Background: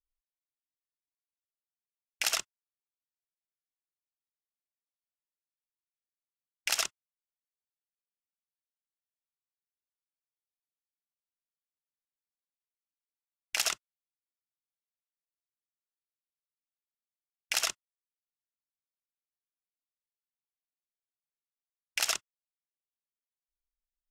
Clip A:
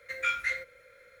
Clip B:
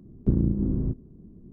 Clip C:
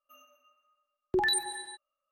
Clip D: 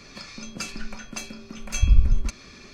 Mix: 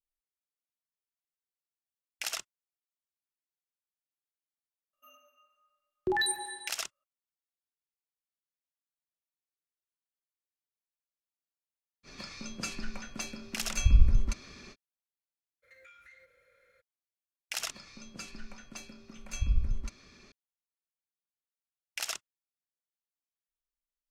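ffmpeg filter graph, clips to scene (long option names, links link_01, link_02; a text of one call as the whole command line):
ffmpeg -i bed.wav -i cue0.wav -i cue1.wav -i cue2.wav -i cue3.wav -filter_complex "[4:a]asplit=2[link_01][link_02];[0:a]volume=-6dB[link_03];[3:a]asplit=2[link_04][link_05];[link_05]adelay=29,volume=-12dB[link_06];[link_04][link_06]amix=inputs=2:normalize=0[link_07];[1:a]acompressor=threshold=-44dB:ratio=6:attack=3.2:release=140:knee=1:detection=peak[link_08];[link_07]atrim=end=2.11,asetpts=PTS-STARTPTS,volume=-2dB,afade=type=in:duration=0.004:curve=hsin,afade=type=out:start_time=2.106:duration=0.004:curve=hsin,adelay=217413S[link_09];[link_01]atrim=end=2.73,asetpts=PTS-STARTPTS,volume=-4dB,afade=type=in:duration=0.05,afade=type=out:start_time=2.68:duration=0.05,adelay=12030[link_10];[link_08]atrim=end=1.2,asetpts=PTS-STARTPTS,volume=-10.5dB,afade=type=in:duration=0.02,afade=type=out:start_time=1.18:duration=0.02,adelay=15620[link_11];[link_02]atrim=end=2.73,asetpts=PTS-STARTPTS,volume=-11dB,afade=type=in:duration=0.004:curve=hsin,afade=type=out:start_time=2.726:duration=0.004:curve=hsin,adelay=17590[link_12];[link_03][link_09][link_10][link_11][link_12]amix=inputs=5:normalize=0" out.wav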